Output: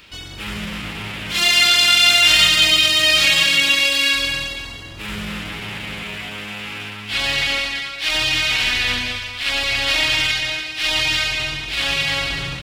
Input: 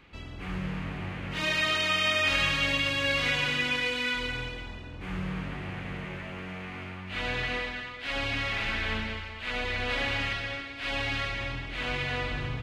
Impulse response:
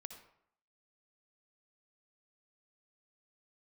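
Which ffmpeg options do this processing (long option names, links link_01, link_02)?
-filter_complex "[0:a]asplit=2[link_01][link_02];[1:a]atrim=start_sample=2205,lowpass=4700[link_03];[link_02][link_03]afir=irnorm=-1:irlink=0,volume=-8.5dB[link_04];[link_01][link_04]amix=inputs=2:normalize=0,crystalizer=i=8.5:c=0,asetrate=49501,aresample=44100,atempo=0.890899,volume=2dB"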